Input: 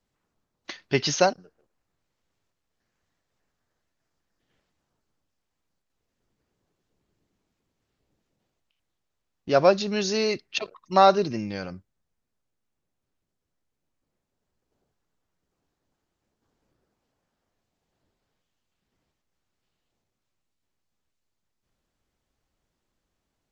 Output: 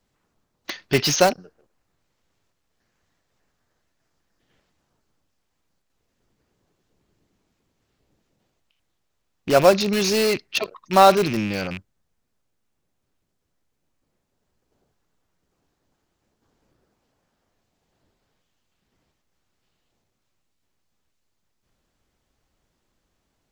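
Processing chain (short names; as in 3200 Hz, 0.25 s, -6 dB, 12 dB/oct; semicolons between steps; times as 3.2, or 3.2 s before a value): rattling part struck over -39 dBFS, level -27 dBFS; in parallel at -8 dB: wrapped overs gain 20.5 dB; on the sum: gain +3.5 dB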